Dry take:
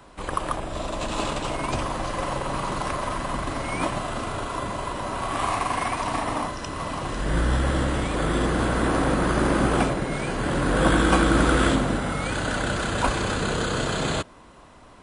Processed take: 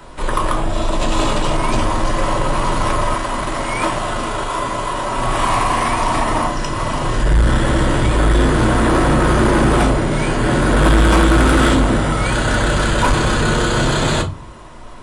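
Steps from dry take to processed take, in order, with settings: reverberation RT60 0.25 s, pre-delay 3 ms, DRR 4 dB; saturation -15.5 dBFS, distortion -12 dB; 3.14–5.18 s: bass shelf 240 Hz -8 dB; trim +8 dB

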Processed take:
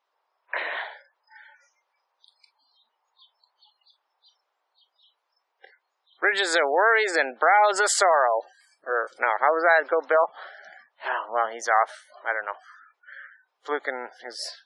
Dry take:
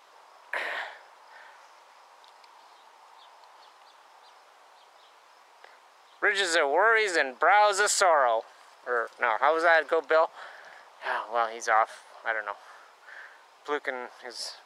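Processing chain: spectral noise reduction 24 dB; 7.30–7.76 s: low-pass 4.9 kHz 12 dB/octave; spectral gate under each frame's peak -25 dB strong; trim +2.5 dB

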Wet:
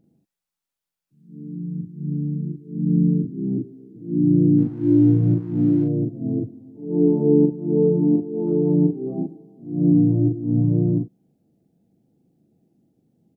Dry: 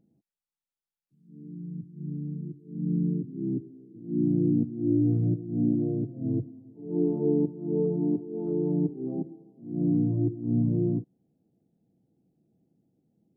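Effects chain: 4.58–5.84 s: hysteresis with a dead band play -48 dBFS; doubling 41 ms -3 dB; trim +5 dB

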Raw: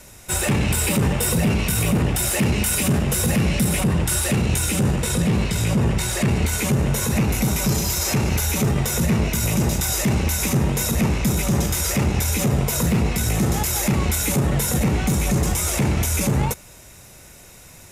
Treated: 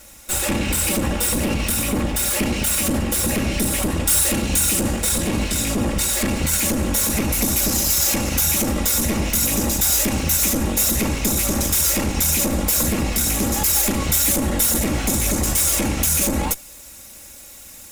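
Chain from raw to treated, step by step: comb filter that takes the minimum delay 3.6 ms; treble shelf 5 kHz +4.5 dB, from 3.83 s +10 dB

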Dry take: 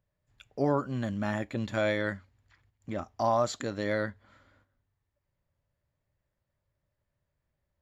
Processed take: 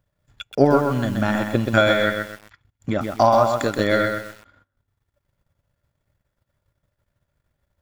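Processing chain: small resonant body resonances 1.4/3.4 kHz, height 11 dB, ringing for 50 ms; transient shaper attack +7 dB, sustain -11 dB; bit-crushed delay 128 ms, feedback 35%, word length 8-bit, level -4.5 dB; trim +8 dB

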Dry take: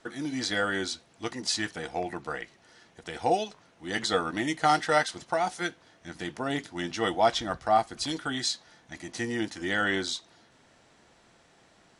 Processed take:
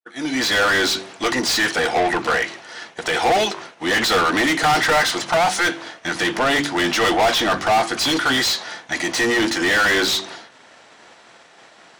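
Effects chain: fade-in on the opening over 0.72 s; de-hum 47.78 Hz, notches 8; expander -52 dBFS; overdrive pedal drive 33 dB, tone 4.2 kHz, clips at -9.5 dBFS

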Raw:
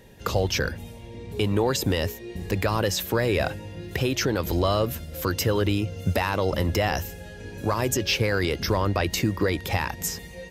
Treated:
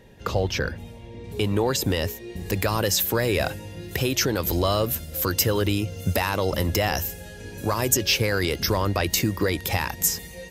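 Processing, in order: treble shelf 6.1 kHz -8 dB, from 1.24 s +4 dB, from 2.46 s +11 dB

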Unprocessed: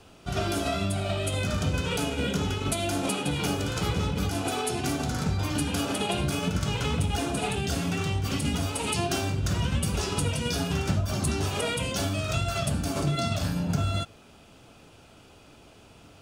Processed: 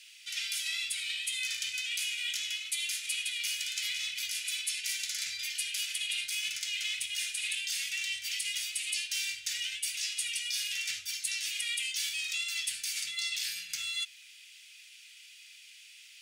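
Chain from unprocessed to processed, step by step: elliptic high-pass 2 kHz, stop band 50 dB; reverse; compression, threshold -38 dBFS, peak gain reduction 11 dB; reverse; trim +7 dB

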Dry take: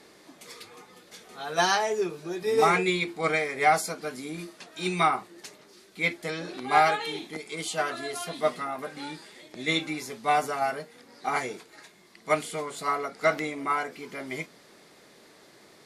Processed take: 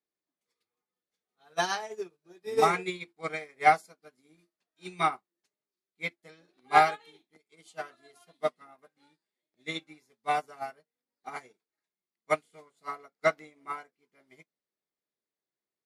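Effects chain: upward expansion 2.5:1, over -46 dBFS; trim +2 dB

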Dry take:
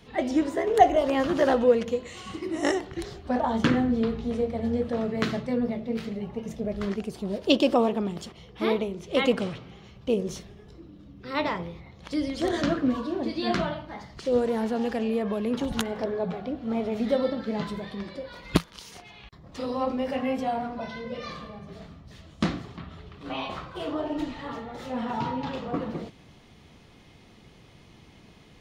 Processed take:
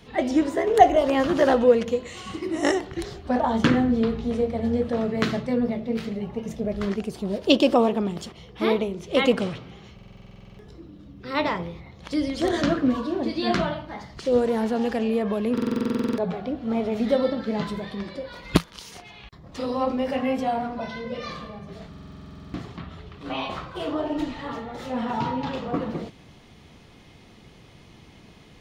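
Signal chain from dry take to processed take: buffer glitch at 9.94/15.53/21.89 s, samples 2048, times 13; trim +3 dB

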